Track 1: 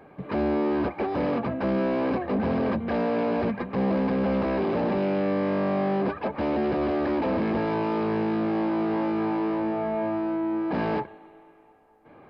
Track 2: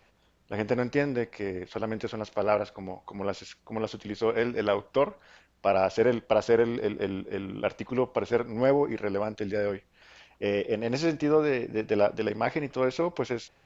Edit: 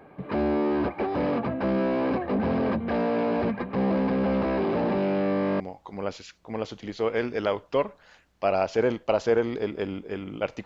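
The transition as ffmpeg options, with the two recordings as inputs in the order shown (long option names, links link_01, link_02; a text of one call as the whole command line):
ffmpeg -i cue0.wav -i cue1.wav -filter_complex "[0:a]apad=whole_dur=10.65,atrim=end=10.65,atrim=end=5.602[link_01];[1:a]atrim=start=2.818:end=7.87[link_02];[link_01][link_02]acrossfade=duration=0.004:curve1=hsin:curve2=hsin" out.wav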